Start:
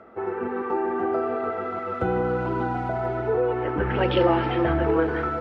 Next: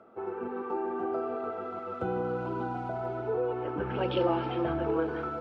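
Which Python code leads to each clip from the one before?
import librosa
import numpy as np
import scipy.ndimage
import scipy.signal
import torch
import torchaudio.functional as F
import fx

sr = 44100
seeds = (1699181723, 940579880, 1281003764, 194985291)

y = scipy.signal.sosfilt(scipy.signal.butter(2, 100.0, 'highpass', fs=sr, output='sos'), x)
y = fx.peak_eq(y, sr, hz=1900.0, db=-11.5, octaves=0.32)
y = y * 10.0 ** (-7.0 / 20.0)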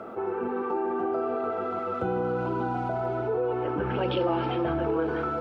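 y = fx.env_flatten(x, sr, amount_pct=50)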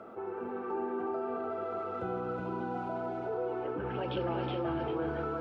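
y = x + 10.0 ** (-3.5 / 20.0) * np.pad(x, (int(369 * sr / 1000.0), 0))[:len(x)]
y = y * 10.0 ** (-8.5 / 20.0)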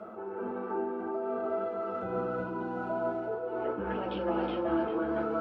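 y = fx.rev_fdn(x, sr, rt60_s=0.31, lf_ratio=0.7, hf_ratio=0.4, size_ms=28.0, drr_db=-3.0)
y = fx.am_noise(y, sr, seeds[0], hz=5.7, depth_pct=55)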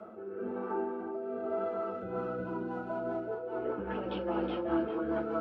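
y = fx.rotary_switch(x, sr, hz=1.0, then_hz=5.0, switch_at_s=1.75)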